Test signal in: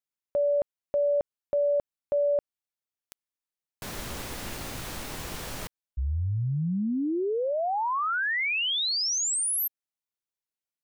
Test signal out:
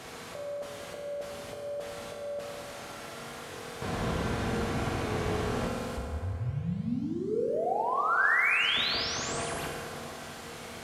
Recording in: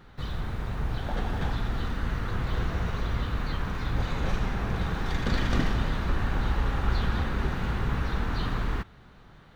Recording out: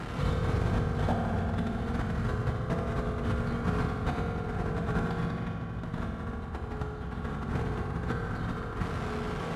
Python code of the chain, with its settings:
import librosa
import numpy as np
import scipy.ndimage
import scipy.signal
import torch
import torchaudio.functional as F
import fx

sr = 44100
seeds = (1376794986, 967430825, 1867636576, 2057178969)

y = fx.delta_mod(x, sr, bps=64000, step_db=-35.0)
y = fx.lowpass(y, sr, hz=1200.0, slope=6)
y = fx.over_compress(y, sr, threshold_db=-32.0, ratio=-0.5)
y = scipy.signal.sosfilt(scipy.signal.butter(2, 46.0, 'highpass', fs=sr, output='sos'), y)
y = fx.rev_fdn(y, sr, rt60_s=2.7, lf_ratio=1.0, hf_ratio=0.6, size_ms=13.0, drr_db=-2.0)